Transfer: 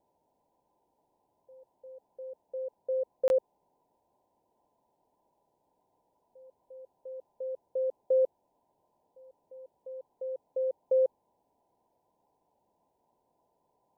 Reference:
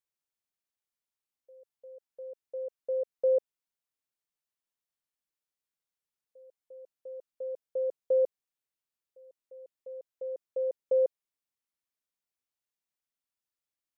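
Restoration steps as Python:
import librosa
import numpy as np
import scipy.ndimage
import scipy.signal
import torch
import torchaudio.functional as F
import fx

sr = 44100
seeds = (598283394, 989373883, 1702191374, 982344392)

y = fx.fix_interpolate(x, sr, at_s=(3.28,), length_ms=21.0)
y = fx.noise_reduce(y, sr, print_start_s=0.19, print_end_s=0.69, reduce_db=16.0)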